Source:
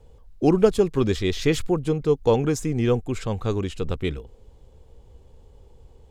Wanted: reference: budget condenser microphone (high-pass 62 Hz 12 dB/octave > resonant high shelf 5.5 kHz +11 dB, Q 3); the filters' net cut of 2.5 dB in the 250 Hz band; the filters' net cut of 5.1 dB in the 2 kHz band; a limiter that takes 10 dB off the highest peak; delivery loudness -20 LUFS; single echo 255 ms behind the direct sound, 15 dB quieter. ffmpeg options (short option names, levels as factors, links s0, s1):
-af "equalizer=f=250:t=o:g=-3.5,equalizer=f=2000:t=o:g=-4,alimiter=limit=0.15:level=0:latency=1,highpass=62,highshelf=f=5500:t=q:w=3:g=11,aecho=1:1:255:0.178,volume=1.88"